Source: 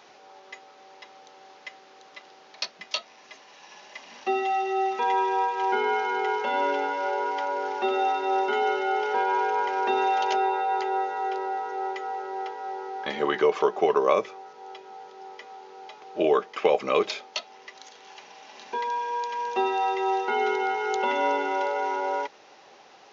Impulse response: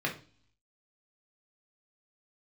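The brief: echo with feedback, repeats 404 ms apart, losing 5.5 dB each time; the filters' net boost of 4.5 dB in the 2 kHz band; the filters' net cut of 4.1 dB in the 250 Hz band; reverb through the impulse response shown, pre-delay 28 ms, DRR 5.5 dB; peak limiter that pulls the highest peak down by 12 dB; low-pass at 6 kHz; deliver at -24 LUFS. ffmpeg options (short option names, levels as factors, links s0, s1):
-filter_complex "[0:a]lowpass=6000,equalizer=f=250:t=o:g=-8.5,equalizer=f=2000:t=o:g=6.5,alimiter=limit=0.126:level=0:latency=1,aecho=1:1:404|808|1212|1616|2020|2424|2828:0.531|0.281|0.149|0.079|0.0419|0.0222|0.0118,asplit=2[s0][s1];[1:a]atrim=start_sample=2205,adelay=28[s2];[s1][s2]afir=irnorm=-1:irlink=0,volume=0.224[s3];[s0][s3]amix=inputs=2:normalize=0,volume=1.41"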